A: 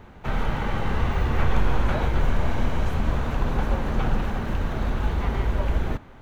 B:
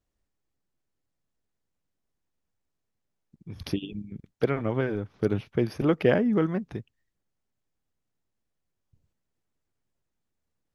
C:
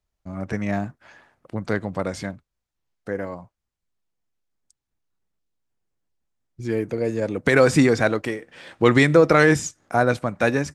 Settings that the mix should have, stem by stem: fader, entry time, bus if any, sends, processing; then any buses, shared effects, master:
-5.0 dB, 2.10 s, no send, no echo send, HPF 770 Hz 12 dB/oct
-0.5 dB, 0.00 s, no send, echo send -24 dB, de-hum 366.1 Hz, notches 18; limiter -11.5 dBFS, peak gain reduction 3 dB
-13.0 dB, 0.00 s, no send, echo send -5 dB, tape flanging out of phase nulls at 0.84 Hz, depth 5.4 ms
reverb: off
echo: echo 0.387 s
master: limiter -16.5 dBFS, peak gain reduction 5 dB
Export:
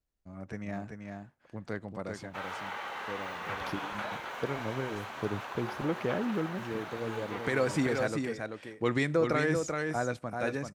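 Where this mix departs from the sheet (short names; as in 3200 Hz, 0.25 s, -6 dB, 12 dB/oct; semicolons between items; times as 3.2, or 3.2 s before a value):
stem B -0.5 dB -> -8.5 dB; stem C: missing tape flanging out of phase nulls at 0.84 Hz, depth 5.4 ms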